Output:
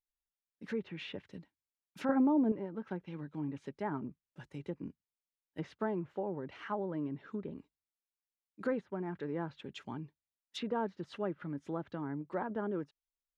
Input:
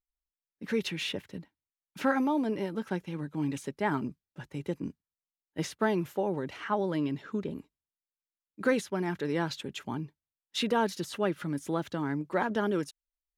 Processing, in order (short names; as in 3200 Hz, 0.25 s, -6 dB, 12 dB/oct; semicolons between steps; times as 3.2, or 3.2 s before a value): 2.09–2.52 low shelf 490 Hz +10.5 dB; treble ducked by the level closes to 1300 Hz, closed at -27.5 dBFS; gain -7 dB